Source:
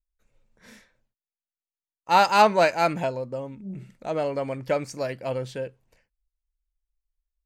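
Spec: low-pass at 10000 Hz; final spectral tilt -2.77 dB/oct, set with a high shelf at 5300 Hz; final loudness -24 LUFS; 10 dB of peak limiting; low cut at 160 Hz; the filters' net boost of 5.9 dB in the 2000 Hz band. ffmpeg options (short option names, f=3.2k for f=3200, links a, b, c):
-af "highpass=160,lowpass=10k,equalizer=f=2k:t=o:g=9,highshelf=f=5.3k:g=-4.5,volume=2.5dB,alimiter=limit=-8.5dB:level=0:latency=1"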